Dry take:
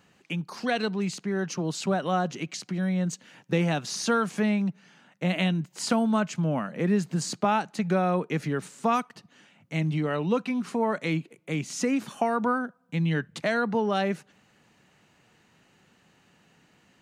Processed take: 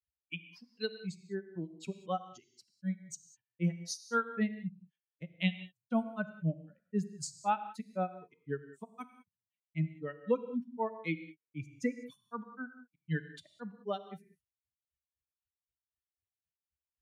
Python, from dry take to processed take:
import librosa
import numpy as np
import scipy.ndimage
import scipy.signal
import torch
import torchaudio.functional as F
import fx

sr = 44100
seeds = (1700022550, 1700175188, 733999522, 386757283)

y = fx.bin_expand(x, sr, power=2.0)
y = fx.granulator(y, sr, seeds[0], grain_ms=142.0, per_s=3.9, spray_ms=26.0, spread_st=0)
y = fx.rev_gated(y, sr, seeds[1], gate_ms=220, shape='flat', drr_db=11.0)